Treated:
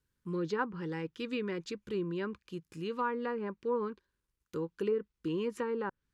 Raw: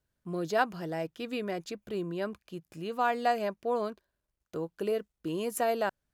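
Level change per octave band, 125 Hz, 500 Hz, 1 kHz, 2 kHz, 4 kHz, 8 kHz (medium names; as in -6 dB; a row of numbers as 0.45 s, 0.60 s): 0.0 dB, -3.0 dB, -7.5 dB, -5.0 dB, -4.5 dB, under -10 dB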